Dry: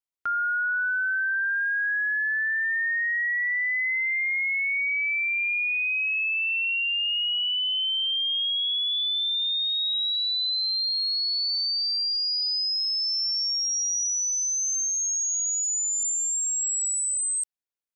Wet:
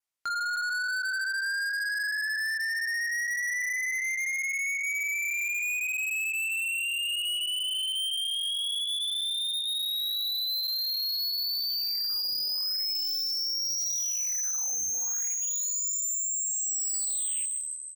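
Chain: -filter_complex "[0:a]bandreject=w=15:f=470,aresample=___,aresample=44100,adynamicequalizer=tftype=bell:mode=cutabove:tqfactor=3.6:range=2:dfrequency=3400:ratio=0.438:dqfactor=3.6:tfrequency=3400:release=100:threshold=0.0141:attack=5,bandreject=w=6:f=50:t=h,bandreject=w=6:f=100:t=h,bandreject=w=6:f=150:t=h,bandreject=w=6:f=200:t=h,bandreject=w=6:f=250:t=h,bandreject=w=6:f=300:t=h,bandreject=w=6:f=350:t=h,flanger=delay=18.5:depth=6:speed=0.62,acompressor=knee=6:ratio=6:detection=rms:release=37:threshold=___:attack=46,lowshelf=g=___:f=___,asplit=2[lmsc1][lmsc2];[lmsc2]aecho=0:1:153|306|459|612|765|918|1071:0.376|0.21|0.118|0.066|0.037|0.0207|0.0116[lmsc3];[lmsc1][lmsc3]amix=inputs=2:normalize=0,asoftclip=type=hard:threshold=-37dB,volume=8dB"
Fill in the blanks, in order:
32000, -29dB, -6.5, 480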